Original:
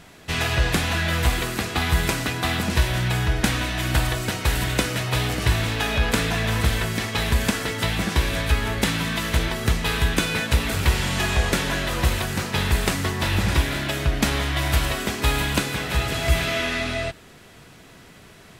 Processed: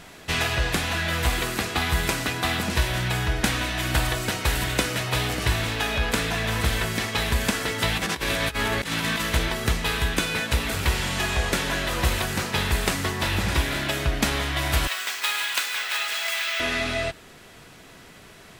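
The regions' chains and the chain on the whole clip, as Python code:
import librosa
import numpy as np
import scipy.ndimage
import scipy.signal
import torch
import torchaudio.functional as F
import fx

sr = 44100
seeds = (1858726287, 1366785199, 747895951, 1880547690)

y = fx.chain(x, sr, fx.low_shelf(hz=85.0, db=-9.0),
    fx.over_compress(threshold_db=-27.0, ratio=-0.5), at=(7.95, 9.22))
y = fx.chain(y, sr, fx.highpass(hz=1300.0, slope=12),
    fx.resample_bad(factor=2, down='filtered', up='hold'), at=(14.87, 16.6))
y = fx.peak_eq(y, sr, hz=110.0, db=-4.0, octaves=2.8)
y = fx.rider(y, sr, range_db=10, speed_s=0.5)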